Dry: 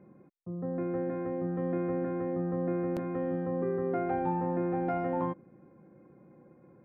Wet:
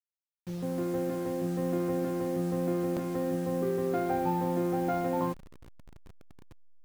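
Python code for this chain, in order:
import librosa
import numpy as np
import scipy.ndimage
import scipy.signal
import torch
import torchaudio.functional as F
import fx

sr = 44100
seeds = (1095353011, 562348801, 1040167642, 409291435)

y = fx.delta_hold(x, sr, step_db=-44.0)
y = y * 10.0 ** (1.5 / 20.0)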